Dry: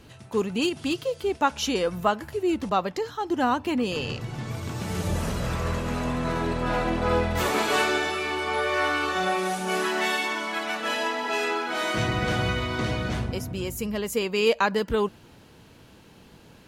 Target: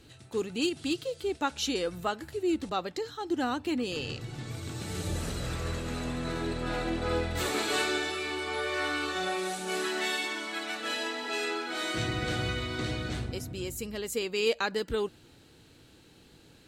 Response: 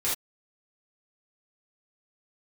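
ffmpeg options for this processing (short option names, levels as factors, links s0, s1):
-af "equalizer=f=200:t=o:w=0.33:g=-6,equalizer=f=315:t=o:w=0.33:g=4,equalizer=f=630:t=o:w=0.33:g=-4,equalizer=f=1000:t=o:w=0.33:g=-8,equalizer=f=4000:t=o:w=0.33:g=7,equalizer=f=8000:t=o:w=0.33:g=7,volume=0.531"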